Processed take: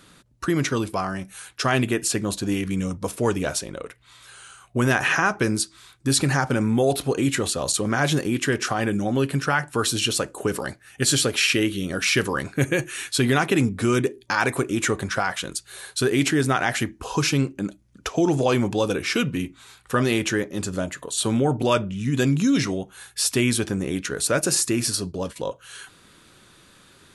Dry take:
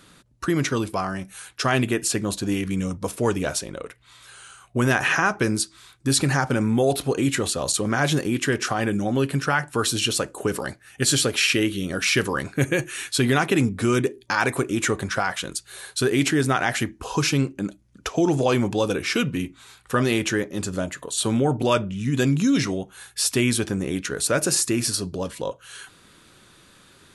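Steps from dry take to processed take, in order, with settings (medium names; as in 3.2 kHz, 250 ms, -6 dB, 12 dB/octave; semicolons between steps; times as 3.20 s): 24.41–25.36 s: gate -32 dBFS, range -11 dB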